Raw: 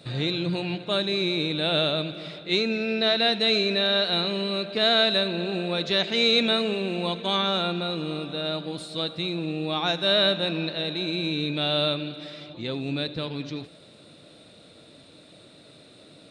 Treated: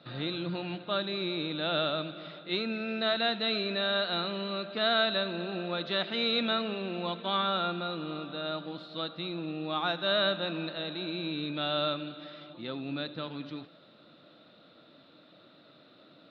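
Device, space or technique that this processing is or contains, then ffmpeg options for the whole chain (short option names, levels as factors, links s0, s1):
kitchen radio: -af "highpass=180,equalizer=f=430:t=q:w=4:g=-6,equalizer=f=1300:t=q:w=4:g=7,equalizer=f=2300:t=q:w=4:g=-5,lowpass=f=4100:w=0.5412,lowpass=f=4100:w=1.3066,highshelf=f=8700:g=-12,volume=0.596"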